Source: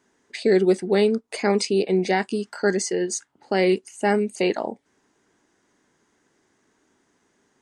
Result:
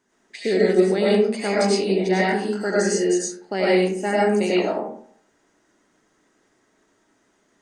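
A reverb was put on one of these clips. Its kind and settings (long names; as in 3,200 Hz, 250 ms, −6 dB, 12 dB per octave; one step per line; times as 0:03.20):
comb and all-pass reverb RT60 0.6 s, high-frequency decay 0.5×, pre-delay 60 ms, DRR −6.5 dB
level −4.5 dB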